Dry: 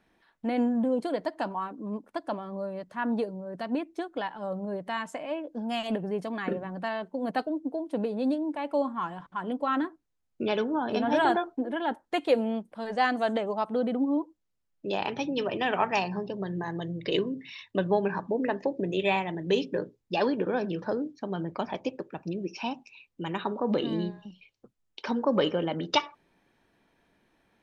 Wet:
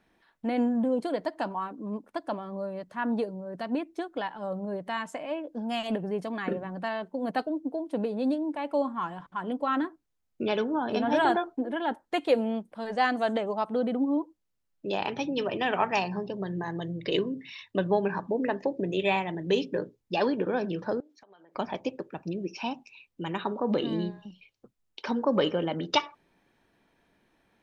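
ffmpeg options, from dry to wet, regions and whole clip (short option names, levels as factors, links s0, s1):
-filter_complex "[0:a]asettb=1/sr,asplit=3[s0][s1][s2];[s0]atrim=end=21.004[s3];[s1]atrim=start=21:end=21.55,asetpts=PTS-STARTPTS,afade=t=in:d=0.004:c=qsin,afade=t=out:st=0.546:d=0.004:c=qsin,highpass=650,acompressor=threshold=0.00251:ratio=12:attack=3.2:release=140:knee=1:detection=peak[s4];[s2]atrim=start=21.546[s5];[s3][s4]acrossfade=d=0.004:c1=hsin:c2=qsin[s6];[s6][s5]acrossfade=d=0.004:c1=qsin:c2=hsin"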